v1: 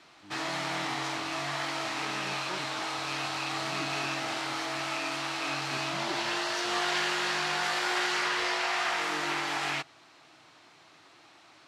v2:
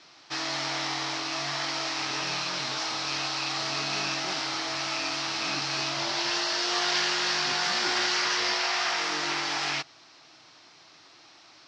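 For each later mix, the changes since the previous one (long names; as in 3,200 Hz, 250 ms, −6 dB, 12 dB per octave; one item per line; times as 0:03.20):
speech: entry +1.75 s
master: add low-pass with resonance 5,400 Hz, resonance Q 3.4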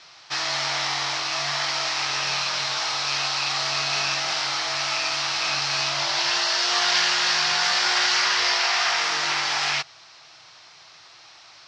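background +6.0 dB
master: add parametric band 280 Hz −15 dB 1.1 octaves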